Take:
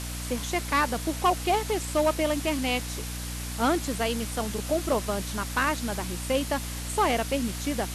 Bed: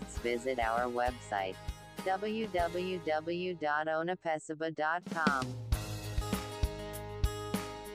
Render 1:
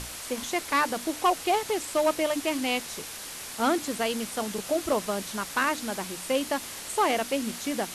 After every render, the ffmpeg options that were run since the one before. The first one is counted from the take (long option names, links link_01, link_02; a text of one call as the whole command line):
ffmpeg -i in.wav -af "bandreject=frequency=60:width_type=h:width=6,bandreject=frequency=120:width_type=h:width=6,bandreject=frequency=180:width_type=h:width=6,bandreject=frequency=240:width_type=h:width=6,bandreject=frequency=300:width_type=h:width=6" out.wav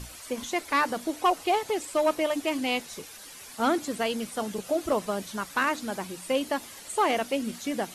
ffmpeg -i in.wav -af "afftdn=noise_reduction=10:noise_floor=-40" out.wav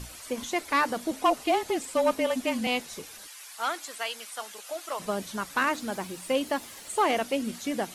ffmpeg -i in.wav -filter_complex "[0:a]asettb=1/sr,asplit=3[link_01][link_02][link_03];[link_01]atrim=end=1.114[link_04];[link_02]atrim=start=1.11:end=2.67,asetpts=PTS-STARTPTS,afade=type=in:duration=0.004:curve=qsin,afade=type=out:start_time=1.556:duration=0.004:curve=qsin,afreqshift=-34[link_05];[link_03]atrim=start=2.666[link_06];[link_04][link_05]acrossfade=duration=0.004:curve1=hsin:curve2=qsin[link_07];[link_07][link_06]acrossfade=duration=0.004:curve1=qsin:curve2=hsin,asplit=3[link_08][link_09][link_10];[link_08]afade=type=out:start_time=3.26:duration=0.02[link_11];[link_09]highpass=970,afade=type=in:start_time=3.26:duration=0.02,afade=type=out:start_time=4.99:duration=0.02[link_12];[link_10]afade=type=in:start_time=4.99:duration=0.02[link_13];[link_11][link_12][link_13]amix=inputs=3:normalize=0,asettb=1/sr,asplit=3[link_14][link_15][link_16];[link_14]atrim=end=5.704[link_17];[link_15]atrim=start=5.7:end=7.08,asetpts=PTS-STARTPTS,afade=type=in:duration=0.004:curve=qsin,afade=type=out:start_time=1.376:duration=0.004:curve=qsin,aeval=exprs='val(0)*gte(abs(val(0)),0.00251)':channel_layout=same[link_18];[link_16]atrim=start=7.076[link_19];[link_17][link_18]acrossfade=duration=0.004:curve1=hsin:curve2=qsin[link_20];[link_20][link_19]acrossfade=duration=0.004:curve1=qsin:curve2=hsin" out.wav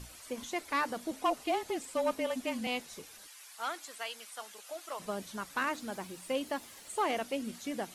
ffmpeg -i in.wav -af "volume=-7dB" out.wav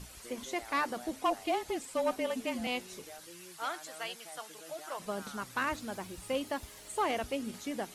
ffmpeg -i in.wav -i bed.wav -filter_complex "[1:a]volume=-18dB[link_01];[0:a][link_01]amix=inputs=2:normalize=0" out.wav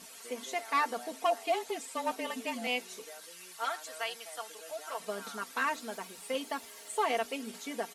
ffmpeg -i in.wav -af "highpass=350,aecho=1:1:4.4:0.71" out.wav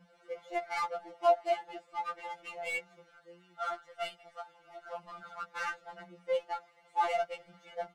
ffmpeg -i in.wav -af "adynamicsmooth=sensitivity=4.5:basefreq=1300,afftfilt=real='re*2.83*eq(mod(b,8),0)':imag='im*2.83*eq(mod(b,8),0)':win_size=2048:overlap=0.75" out.wav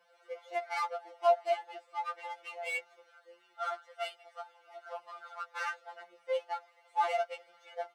ffmpeg -i in.wav -af "highpass=frequency=470:width=0.5412,highpass=frequency=470:width=1.3066,bandreject=frequency=7000:width=17" out.wav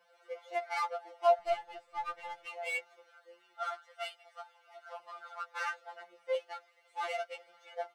ffmpeg -i in.wav -filter_complex "[0:a]asettb=1/sr,asplit=3[link_01][link_02][link_03];[link_01]atrim=end=1.394[link_04];[link_02]atrim=start=1.39:end=2.46,asetpts=PTS-STARTPTS,afade=type=in:duration=0.004:curve=qsin,afade=type=out:start_time=1.066:duration=0.004:curve=qsin,aeval=exprs='if(lt(val(0),0),0.708*val(0),val(0))':channel_layout=same[link_05];[link_03]atrim=start=2.456[link_06];[link_04][link_05]acrossfade=duration=0.004:curve1=hsin:curve2=qsin[link_07];[link_07][link_06]acrossfade=duration=0.004:curve1=qsin:curve2=hsin,asettb=1/sr,asplit=3[link_08][link_09][link_10];[link_08]atrim=end=3.634[link_11];[link_09]atrim=start=3.63:end=5,asetpts=PTS-STARTPTS,afade=type=in:duration=0.004:curve=qsin,afade=type=out:start_time=1.366:duration=0.004:curve=qsin,lowshelf=frequency=490:gain=-12[link_12];[link_10]atrim=start=4.996[link_13];[link_11][link_12]acrossfade=duration=0.004:curve1=hsin:curve2=qsin[link_14];[link_14][link_13]acrossfade=duration=0.004:curve1=qsin:curve2=hsin,asettb=1/sr,asplit=3[link_15][link_16][link_17];[link_15]atrim=end=6.354[link_18];[link_16]atrim=start=6.35:end=7.35,asetpts=PTS-STARTPTS,afade=type=in:duration=0.004:curve=qsin,afade=type=out:start_time=0.996:duration=0.004:curve=qsin,equalizer=frequency=860:width_type=o:width=0.84:gain=-9.5[link_19];[link_17]atrim=start=7.346[link_20];[link_18][link_19]acrossfade=duration=0.004:curve1=hsin:curve2=qsin[link_21];[link_21][link_20]acrossfade=duration=0.004:curve1=qsin:curve2=hsin" out.wav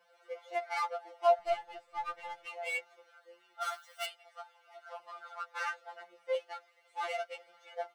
ffmpeg -i in.wav -filter_complex "[0:a]asplit=3[link_01][link_02][link_03];[link_01]afade=type=out:start_time=3.6:duration=0.02[link_04];[link_02]aemphasis=mode=production:type=riaa,afade=type=in:start_time=3.6:duration=0.02,afade=type=out:start_time=4.05:duration=0.02[link_05];[link_03]afade=type=in:start_time=4.05:duration=0.02[link_06];[link_04][link_05][link_06]amix=inputs=3:normalize=0" out.wav